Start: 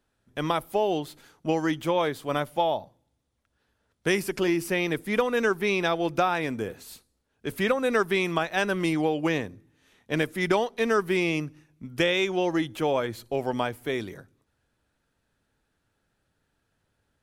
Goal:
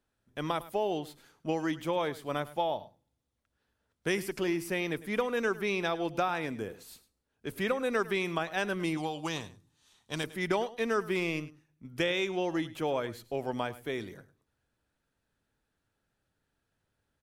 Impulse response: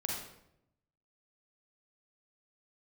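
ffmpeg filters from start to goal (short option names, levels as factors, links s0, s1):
-filter_complex "[0:a]asettb=1/sr,asplit=3[s0][s1][s2];[s0]atrim=end=8.974[s3];[s1]atrim=start=8.97:end=10.24,asetpts=PTS-STARTPTS,afade=t=in:d=0.004:c=qsin,afade=t=out:st=1.266:d=0.004:c=qsin,equalizer=f=250:t=o:w=1:g=-5,equalizer=f=500:t=o:w=1:g=-7,equalizer=f=1000:t=o:w=1:g=6,equalizer=f=2000:t=o:w=1:g=-8,equalizer=f=4000:t=o:w=1:g=8,equalizer=f=8000:t=o:w=1:g=9[s4];[s2]atrim=start=10.236[s5];[s3][s4]acrossfade=d=0.004:c1=hsin:c2=qsin[s6];[s6][s5]acrossfade=d=0.004:c1=qsin:c2=hsin,asettb=1/sr,asplit=3[s7][s8][s9];[s7]atrim=end=11.154[s10];[s8]atrim=start=11.15:end=11.85,asetpts=PTS-STARTPTS,afade=t=in:d=0.004:c=qsin,afade=t=out:st=0.696:d=0.004:c=qsin,aeval=exprs='0.211*(cos(1*acos(clip(val(0)/0.211,-1,1)))-cos(1*PI/2))+0.0119*(cos(7*acos(clip(val(0)/0.211,-1,1)))-cos(7*PI/2))':c=same[s11];[s9]atrim=start=11.846[s12];[s10][s11]acrossfade=d=0.004:c1=hsin:c2=qsin[s13];[s13][s12]acrossfade=d=0.004:c1=qsin:c2=hsin,aecho=1:1:104:0.133,volume=0.501"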